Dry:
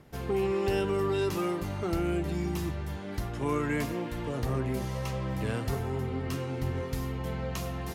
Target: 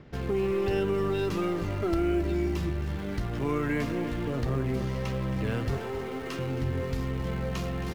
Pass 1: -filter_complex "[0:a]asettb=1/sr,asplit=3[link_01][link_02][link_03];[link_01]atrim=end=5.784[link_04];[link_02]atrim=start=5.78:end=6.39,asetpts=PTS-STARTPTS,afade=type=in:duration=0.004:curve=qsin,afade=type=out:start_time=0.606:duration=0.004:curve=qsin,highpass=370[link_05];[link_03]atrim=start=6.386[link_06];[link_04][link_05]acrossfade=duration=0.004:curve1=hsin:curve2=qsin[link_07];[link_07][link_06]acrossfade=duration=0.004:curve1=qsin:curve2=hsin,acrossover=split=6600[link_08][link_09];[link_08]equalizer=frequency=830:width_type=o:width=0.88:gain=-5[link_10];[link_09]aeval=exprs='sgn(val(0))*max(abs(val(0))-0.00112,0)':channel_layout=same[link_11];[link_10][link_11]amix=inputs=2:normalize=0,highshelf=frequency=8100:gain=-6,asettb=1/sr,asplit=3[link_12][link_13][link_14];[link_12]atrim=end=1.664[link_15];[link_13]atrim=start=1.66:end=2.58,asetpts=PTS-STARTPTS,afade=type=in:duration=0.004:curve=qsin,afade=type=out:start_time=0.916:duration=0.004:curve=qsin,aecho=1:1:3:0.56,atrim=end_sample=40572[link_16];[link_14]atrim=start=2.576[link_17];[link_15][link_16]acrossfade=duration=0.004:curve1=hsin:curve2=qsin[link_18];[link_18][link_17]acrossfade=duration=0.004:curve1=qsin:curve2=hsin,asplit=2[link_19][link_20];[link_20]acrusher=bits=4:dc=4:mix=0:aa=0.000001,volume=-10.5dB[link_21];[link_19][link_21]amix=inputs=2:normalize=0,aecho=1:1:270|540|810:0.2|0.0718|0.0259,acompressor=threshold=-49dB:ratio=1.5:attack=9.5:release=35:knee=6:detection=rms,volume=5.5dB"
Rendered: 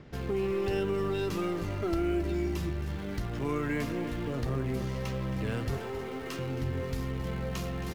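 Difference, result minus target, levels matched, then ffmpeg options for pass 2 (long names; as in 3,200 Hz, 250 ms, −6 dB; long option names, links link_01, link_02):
8,000 Hz band +3.0 dB; downward compressor: peak gain reduction +3 dB
-filter_complex "[0:a]asettb=1/sr,asplit=3[link_01][link_02][link_03];[link_01]atrim=end=5.784[link_04];[link_02]atrim=start=5.78:end=6.39,asetpts=PTS-STARTPTS,afade=type=in:duration=0.004:curve=qsin,afade=type=out:start_time=0.606:duration=0.004:curve=qsin,highpass=370[link_05];[link_03]atrim=start=6.386[link_06];[link_04][link_05]acrossfade=duration=0.004:curve1=hsin:curve2=qsin[link_07];[link_07][link_06]acrossfade=duration=0.004:curve1=qsin:curve2=hsin,acrossover=split=6600[link_08][link_09];[link_08]equalizer=frequency=830:width_type=o:width=0.88:gain=-5[link_10];[link_09]aeval=exprs='sgn(val(0))*max(abs(val(0))-0.00112,0)':channel_layout=same[link_11];[link_10][link_11]amix=inputs=2:normalize=0,highshelf=frequency=8100:gain=-16,asettb=1/sr,asplit=3[link_12][link_13][link_14];[link_12]atrim=end=1.664[link_15];[link_13]atrim=start=1.66:end=2.58,asetpts=PTS-STARTPTS,afade=type=in:duration=0.004:curve=qsin,afade=type=out:start_time=0.916:duration=0.004:curve=qsin,aecho=1:1:3:0.56,atrim=end_sample=40572[link_16];[link_14]atrim=start=2.576[link_17];[link_15][link_16]acrossfade=duration=0.004:curve1=hsin:curve2=qsin[link_18];[link_18][link_17]acrossfade=duration=0.004:curve1=qsin:curve2=hsin,asplit=2[link_19][link_20];[link_20]acrusher=bits=4:dc=4:mix=0:aa=0.000001,volume=-10.5dB[link_21];[link_19][link_21]amix=inputs=2:normalize=0,aecho=1:1:270|540|810:0.2|0.0718|0.0259,acompressor=threshold=-40.5dB:ratio=1.5:attack=9.5:release=35:knee=6:detection=rms,volume=5.5dB"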